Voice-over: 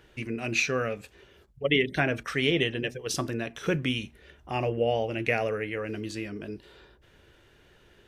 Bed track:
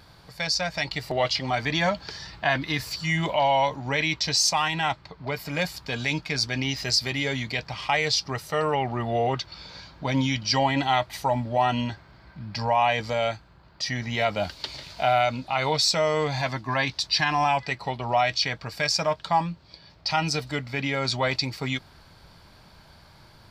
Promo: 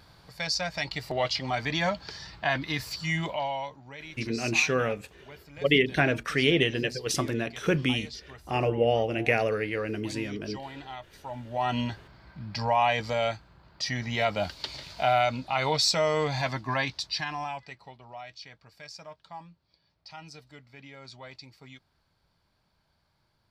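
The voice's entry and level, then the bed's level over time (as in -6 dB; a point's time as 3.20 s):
4.00 s, +2.0 dB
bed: 3.15 s -3.5 dB
3.93 s -18.5 dB
11.15 s -18.5 dB
11.78 s -2 dB
16.70 s -2 dB
18.09 s -20.5 dB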